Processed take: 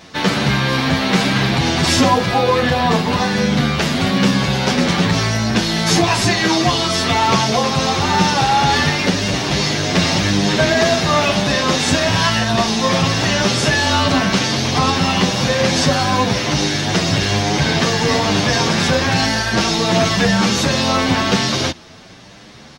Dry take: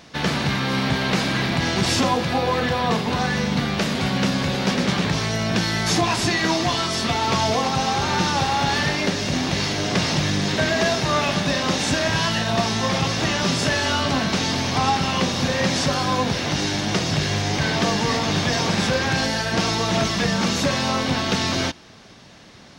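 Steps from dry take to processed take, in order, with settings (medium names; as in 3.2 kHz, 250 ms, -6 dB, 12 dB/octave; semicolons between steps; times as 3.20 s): endless flanger 8.7 ms +1 Hz; trim +8.5 dB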